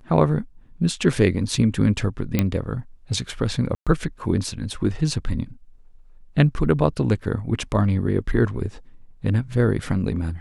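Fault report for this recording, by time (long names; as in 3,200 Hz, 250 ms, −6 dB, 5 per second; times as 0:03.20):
0:02.39: click −6 dBFS
0:03.75–0:03.87: drop-out 116 ms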